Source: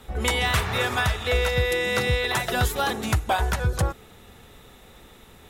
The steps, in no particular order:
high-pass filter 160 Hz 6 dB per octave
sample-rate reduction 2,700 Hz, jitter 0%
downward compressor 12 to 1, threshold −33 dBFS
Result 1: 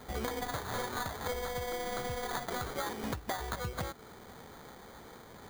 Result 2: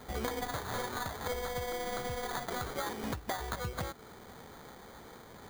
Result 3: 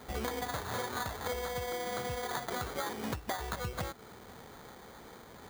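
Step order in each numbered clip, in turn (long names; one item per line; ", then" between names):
high-pass filter, then sample-rate reduction, then downward compressor
high-pass filter, then downward compressor, then sample-rate reduction
sample-rate reduction, then high-pass filter, then downward compressor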